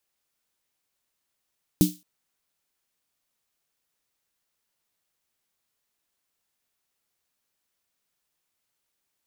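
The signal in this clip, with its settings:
synth snare length 0.22 s, tones 180 Hz, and 300 Hz, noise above 3,300 Hz, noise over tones −11 dB, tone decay 0.22 s, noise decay 0.31 s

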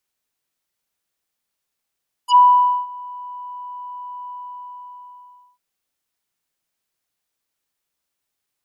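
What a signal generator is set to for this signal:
subtractive voice square B5 24 dB per octave, low-pass 1,400 Hz, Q 2.4, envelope 3.5 octaves, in 0.06 s, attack 73 ms, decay 0.51 s, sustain −24 dB, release 1.28 s, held 2.02 s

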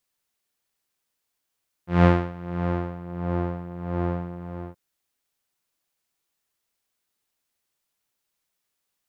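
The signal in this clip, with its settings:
subtractive patch with tremolo F3, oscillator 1 saw, oscillator 2 saw, sub −8 dB, filter lowpass, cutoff 1,000 Hz, Q 0.79, filter envelope 1 octave, filter decay 1.34 s, filter sustain 10%, attack 175 ms, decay 0.29 s, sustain −10 dB, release 0.31 s, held 2.57 s, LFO 1.5 Hz, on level 14.5 dB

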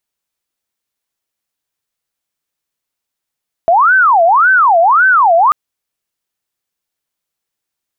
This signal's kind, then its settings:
siren wail 663–1,540 Hz 1.8 per second sine −5.5 dBFS 1.84 s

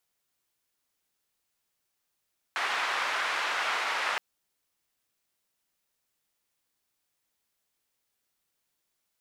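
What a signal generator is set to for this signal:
band-limited noise 1,000–1,700 Hz, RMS −30 dBFS 1.62 s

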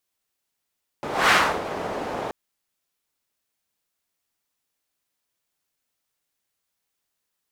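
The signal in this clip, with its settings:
pass-by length 1.28 s, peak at 0:00.28, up 0.23 s, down 0.33 s, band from 600 Hz, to 1,600 Hz, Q 1.2, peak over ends 13 dB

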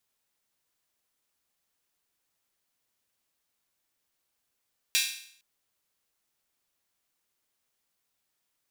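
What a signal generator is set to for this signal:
open synth hi-hat length 0.46 s, high-pass 2,700 Hz, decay 0.61 s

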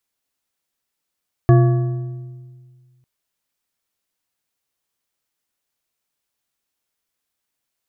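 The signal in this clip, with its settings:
struck metal bar, lowest mode 127 Hz, modes 5, decay 1.89 s, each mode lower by 6 dB, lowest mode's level −7 dB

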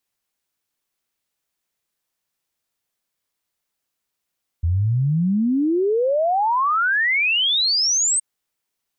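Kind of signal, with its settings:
exponential sine sweep 80 Hz → 8,500 Hz 3.57 s −16 dBFS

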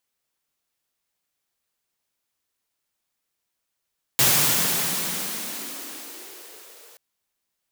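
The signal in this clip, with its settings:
filter sweep on noise white, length 2.78 s highpass, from 120 Hz, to 480 Hz, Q 3.7, exponential, gain ramp −33 dB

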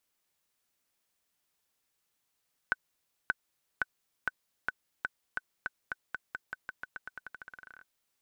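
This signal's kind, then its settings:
bouncing ball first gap 0.58 s, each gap 0.89, 1,510 Hz, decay 29 ms −13.5 dBFS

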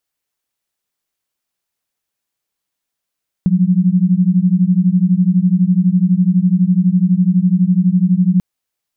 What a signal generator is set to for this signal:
two tones that beat 176 Hz, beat 12 Hz, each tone −12.5 dBFS 4.94 s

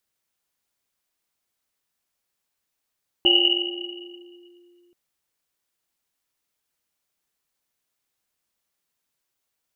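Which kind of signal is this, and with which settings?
drum after Risset length 1.68 s, pitch 350 Hz, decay 2.88 s, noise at 2,900 Hz, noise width 150 Hz, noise 70%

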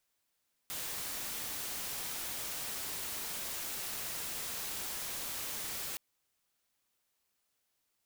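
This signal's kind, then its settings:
noise white, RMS −39.5 dBFS 5.27 s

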